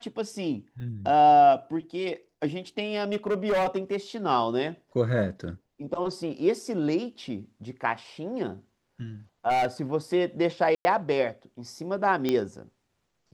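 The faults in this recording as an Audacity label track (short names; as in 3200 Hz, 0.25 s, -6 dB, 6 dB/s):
0.800000	0.800000	gap 2.2 ms
2.950000	3.960000	clipped -21.5 dBFS
9.490000	9.820000	clipped -21 dBFS
10.750000	10.850000	gap 0.1 s
12.290000	12.290000	pop -13 dBFS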